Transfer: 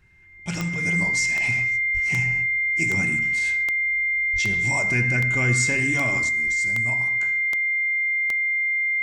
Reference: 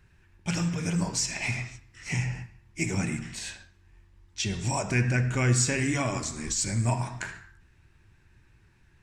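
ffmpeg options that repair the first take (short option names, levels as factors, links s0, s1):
-filter_complex "[0:a]adeclick=t=4,bandreject=f=2100:w=30,asplit=3[s0][s1][s2];[s0]afade=t=out:st=1.93:d=0.02[s3];[s1]highpass=f=140:w=0.5412,highpass=f=140:w=1.3066,afade=t=in:st=1.93:d=0.02,afade=t=out:st=2.05:d=0.02[s4];[s2]afade=t=in:st=2.05:d=0.02[s5];[s3][s4][s5]amix=inputs=3:normalize=0,asplit=3[s6][s7][s8];[s6]afade=t=out:st=4.32:d=0.02[s9];[s7]highpass=f=140:w=0.5412,highpass=f=140:w=1.3066,afade=t=in:st=4.32:d=0.02,afade=t=out:st=4.44:d=0.02[s10];[s8]afade=t=in:st=4.44:d=0.02[s11];[s9][s10][s11]amix=inputs=3:normalize=0,asetnsamples=n=441:p=0,asendcmd='6.29 volume volume 7.5dB',volume=1"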